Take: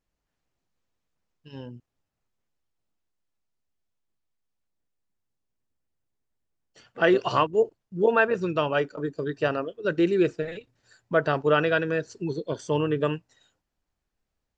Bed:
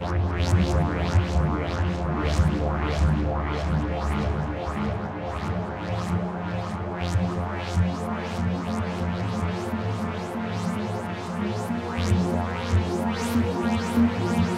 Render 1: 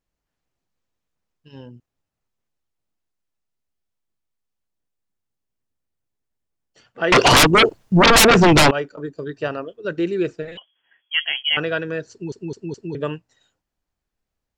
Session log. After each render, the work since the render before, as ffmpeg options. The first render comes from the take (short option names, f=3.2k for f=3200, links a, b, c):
-filter_complex "[0:a]asettb=1/sr,asplit=3[a][b][c];[a]atrim=end=7.124[d];[b]atrim=start=7.12:end=8.71,asetpts=PTS-STARTPTS,afade=t=in:d=0.004:c=qsin,afade=t=out:st=1.586:d=0.004:c=qsin,aeval=exprs='0.398*sin(PI/2*8.91*val(0)/0.398)':c=same[e];[c]atrim=start=8.706[f];[d][e]acrossfade=d=0.004:c1=hsin:c2=qsin[g];[g][f]acrossfade=d=0.004:c1=qsin:c2=hsin,asettb=1/sr,asplit=3[h][i][j];[h]atrim=end=10.574[k];[i]atrim=start=10.57:end=11.57,asetpts=PTS-STARTPTS,afade=t=in:d=0.004:c=qsin,afade=t=out:st=0.996:d=0.004:c=qsin,lowpass=f=2.9k:t=q:w=0.5098,lowpass=f=2.9k:t=q:w=0.6013,lowpass=f=2.9k:t=q:w=0.9,lowpass=f=2.9k:t=q:w=2.563,afreqshift=-3400[l];[j]atrim=start=11.566[m];[k][l]acrossfade=d=0.004:c1=hsin:c2=qsin[n];[n][m]acrossfade=d=0.004:c1=qsin:c2=hsin,asplit=5[o][p][q][r][s];[o]atrim=end=12.322[t];[p]atrim=start=12.108:end=12.322[u];[q]atrim=start=12.108:end=12.322[v];[r]atrim=start=12.108:end=12.322[w];[s]atrim=start=12.948[x];[t][u]acrossfade=d=0.004:c1=hsin:c2=hsin[y];[y][v]acrossfade=d=0.004:c1=hsin:c2=hsin[z];[z][w]acrossfade=d=0.004:c1=hsin:c2=hsin[aa];[aa][x]acrossfade=d=0.004:c1=hsin:c2=hsin"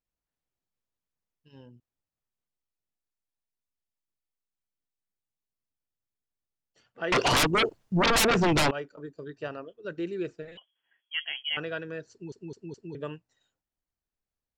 -af "volume=-11dB"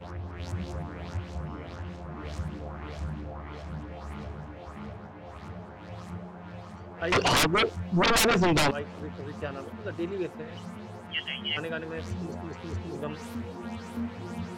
-filter_complex "[1:a]volume=-13.5dB[a];[0:a][a]amix=inputs=2:normalize=0"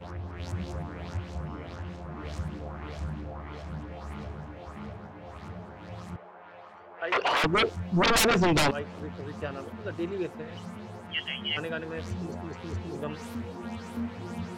-filter_complex "[0:a]asettb=1/sr,asplit=3[a][b][c];[a]atrim=end=6.164[d];[b]atrim=start=6.16:end=7.44,asetpts=PTS-STARTPTS,afade=t=in:d=0.004:c=qsin,afade=t=out:st=1.276:d=0.004:c=qsin,acrossover=split=400 3300:gain=0.0708 1 0.158[e][f][g];[e][f][g]amix=inputs=3:normalize=0[h];[c]atrim=start=7.436[i];[d][h]acrossfade=d=0.004:c1=hsin:c2=qsin[j];[j][i]acrossfade=d=0.004:c1=qsin:c2=hsin"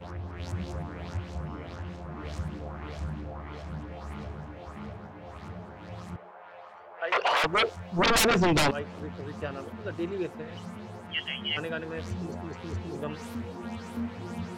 -filter_complex "[0:a]asettb=1/sr,asplit=3[a][b][c];[a]atrim=end=6.314[d];[b]atrim=start=6.31:end=7.99,asetpts=PTS-STARTPTS,afade=t=in:d=0.004:c=qsin,afade=t=out:st=1.676:d=0.004:c=qsin,lowshelf=f=410:t=q:w=1.5:g=-6.5[e];[c]atrim=start=7.986[f];[d][e]acrossfade=d=0.004:c1=hsin:c2=qsin[g];[g][f]acrossfade=d=0.004:c1=qsin:c2=hsin"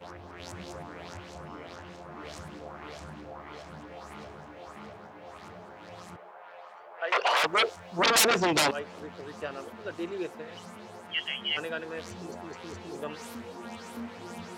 -af "highpass=f=150:p=1,bass=f=250:g=-8,treble=f=4k:g=4"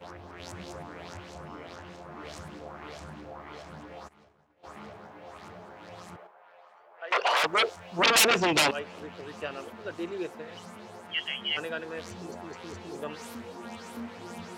-filter_complex "[0:a]asplit=3[a][b][c];[a]afade=t=out:st=4.07:d=0.02[d];[b]agate=range=-33dB:threshold=-34dB:ratio=3:release=100:detection=peak,afade=t=in:st=4.07:d=0.02,afade=t=out:st=4.63:d=0.02[e];[c]afade=t=in:st=4.63:d=0.02[f];[d][e][f]amix=inputs=3:normalize=0,asettb=1/sr,asplit=3[g][h][i];[g]atrim=end=7.814[j];[h]atrim=start=7.81:end=9.71,asetpts=PTS-STARTPTS,afade=t=in:d=0.004:c=qsin,afade=t=out:st=1.896:d=0.004:c=qsin,equalizer=f=2.7k:t=o:w=0.51:g=5.5[k];[i]atrim=start=9.706[l];[j][k]acrossfade=d=0.004:c1=hsin:c2=qsin[m];[m][l]acrossfade=d=0.004:c1=qsin:c2=hsin,asplit=3[n][o][p];[n]atrim=end=6.272[q];[o]atrim=start=6.268:end=7.112,asetpts=PTS-STARTPTS,volume=-7.5dB[r];[p]atrim=start=7.108[s];[q][r]acrossfade=d=0.004:c1=hsin:c2=hsin[t];[t][s]acrossfade=d=0.004:c1=hsin:c2=hsin"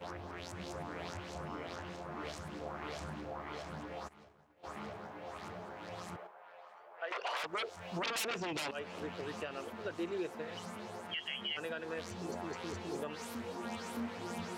-af "acompressor=threshold=-30dB:ratio=3,alimiter=level_in=5dB:limit=-24dB:level=0:latency=1:release=262,volume=-5dB"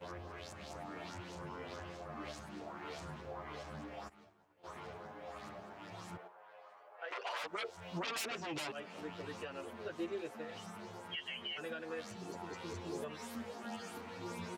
-filter_complex "[0:a]asplit=2[a][b];[b]adelay=9,afreqshift=-0.62[c];[a][c]amix=inputs=2:normalize=1"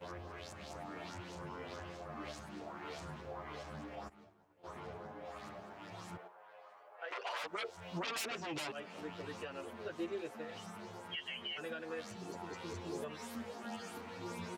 -filter_complex "[0:a]asettb=1/sr,asplit=3[a][b][c];[a]atrim=end=3.954[d];[b]atrim=start=3.95:end=5.25,asetpts=PTS-STARTPTS,afade=t=in:d=0.004:c=qsin,afade=t=out:st=1.296:d=0.004:c=qsin,tiltshelf=f=970:g=3[e];[c]atrim=start=5.246[f];[d][e]acrossfade=d=0.004:c1=hsin:c2=qsin[g];[g][f]acrossfade=d=0.004:c1=qsin:c2=hsin"